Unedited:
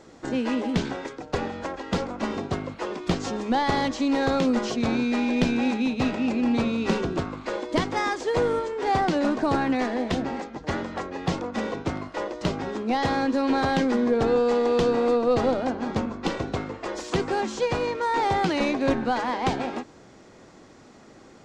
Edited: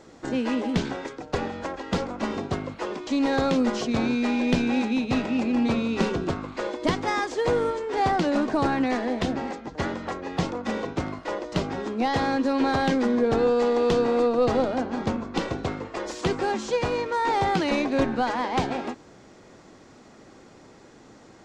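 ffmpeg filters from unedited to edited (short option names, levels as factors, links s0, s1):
-filter_complex "[0:a]asplit=2[s0][s1];[s0]atrim=end=3.072[s2];[s1]atrim=start=3.958[s3];[s2][s3]acrossfade=d=0.004:c1=hsin:c2=hsin"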